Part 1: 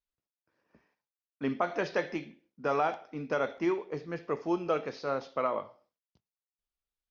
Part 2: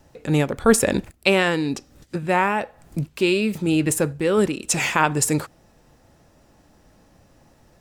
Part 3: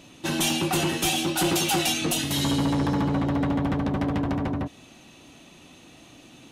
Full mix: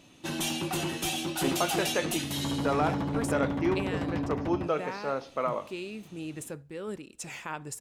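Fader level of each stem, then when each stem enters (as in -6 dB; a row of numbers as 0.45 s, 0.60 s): +0.5 dB, -18.5 dB, -7.0 dB; 0.00 s, 2.50 s, 0.00 s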